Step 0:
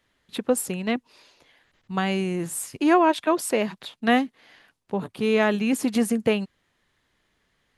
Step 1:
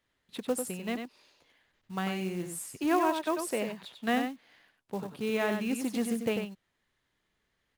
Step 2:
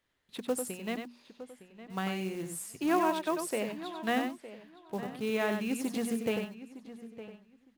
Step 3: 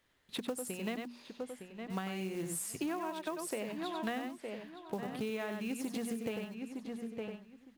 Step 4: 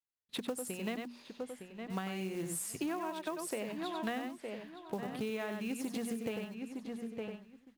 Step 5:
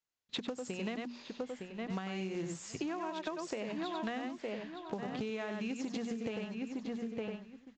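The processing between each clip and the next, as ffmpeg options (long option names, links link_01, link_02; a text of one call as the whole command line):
ffmpeg -i in.wav -af "aecho=1:1:95:0.473,acrusher=bits=5:mode=log:mix=0:aa=0.000001,volume=-9dB" out.wav
ffmpeg -i in.wav -filter_complex "[0:a]bandreject=frequency=60:width_type=h:width=6,bandreject=frequency=120:width_type=h:width=6,bandreject=frequency=180:width_type=h:width=6,bandreject=frequency=240:width_type=h:width=6,asplit=2[link_01][link_02];[link_02]adelay=911,lowpass=frequency=2700:poles=1,volume=-14dB,asplit=2[link_03][link_04];[link_04]adelay=911,lowpass=frequency=2700:poles=1,volume=0.18[link_05];[link_01][link_03][link_05]amix=inputs=3:normalize=0,volume=-1dB" out.wav
ffmpeg -i in.wav -af "acompressor=threshold=-39dB:ratio=16,volume=5dB" out.wav
ffmpeg -i in.wav -af "agate=range=-33dB:threshold=-54dB:ratio=3:detection=peak" out.wav
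ffmpeg -i in.wav -af "acompressor=threshold=-39dB:ratio=6,aresample=16000,aresample=44100,volume=4.5dB" out.wav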